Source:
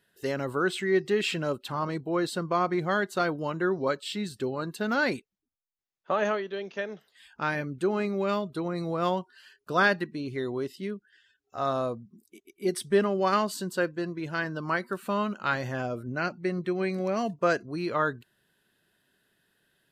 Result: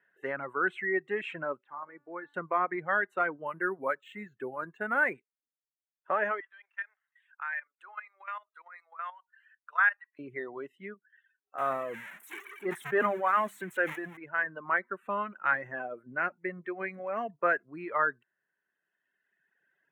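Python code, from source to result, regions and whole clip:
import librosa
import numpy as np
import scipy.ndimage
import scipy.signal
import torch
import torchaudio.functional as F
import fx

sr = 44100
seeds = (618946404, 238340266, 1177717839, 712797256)

y = fx.chain(x, sr, fx.transient(attack_db=5, sustain_db=1),
    fx.bandpass_edges(low_hz=140.0, high_hz=2800.0),
    fx.comb_fb(f0_hz=290.0, decay_s=0.68, harmonics='all', damping=0.0, mix_pct=70), at=(1.64, 2.34))
y = fx.chain(y, sr, fx.lowpass(hz=4900.0, slope=12),
    fx.resample_bad(factor=4, down='filtered', up='hold'), at=(3.46, 5.14))
y = fx.chain(y, sr, fx.highpass(hz=1000.0, slope=24),
    fx.level_steps(step_db=12), at=(6.4, 10.19))
y = fx.chain(y, sr, fx.crossing_spikes(level_db=-21.0),
    fx.hum_notches(base_hz=50, count=4),
    fx.sustainer(db_per_s=23.0), at=(11.58, 14.17))
y = fx.dereverb_blind(y, sr, rt60_s=1.7)
y = scipy.signal.sosfilt(scipy.signal.ellip(3, 1.0, 40, [130.0, 1900.0], 'bandpass', fs=sr, output='sos'), y)
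y = fx.tilt_eq(y, sr, slope=4.5)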